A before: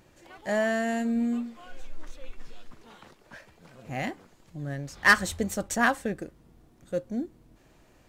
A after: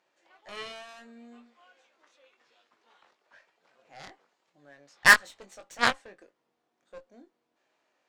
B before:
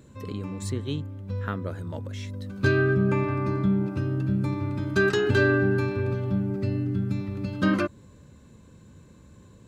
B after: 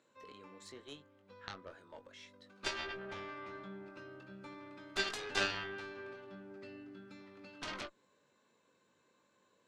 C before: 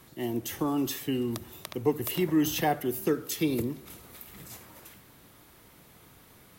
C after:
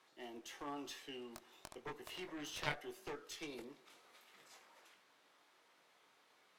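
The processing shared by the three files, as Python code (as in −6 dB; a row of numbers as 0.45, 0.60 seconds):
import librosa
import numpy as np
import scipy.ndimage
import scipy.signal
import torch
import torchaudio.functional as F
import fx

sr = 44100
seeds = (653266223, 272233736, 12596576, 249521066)

y = fx.bandpass_edges(x, sr, low_hz=570.0, high_hz=5600.0)
y = fx.cheby_harmonics(y, sr, harmonics=(6, 7), levels_db=(-26, -15), full_scale_db=-7.0)
y = fx.doubler(y, sr, ms=21.0, db=-7.5)
y = y * 10.0 ** (1.5 / 20.0)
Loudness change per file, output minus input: +5.5, −16.0, −18.0 LU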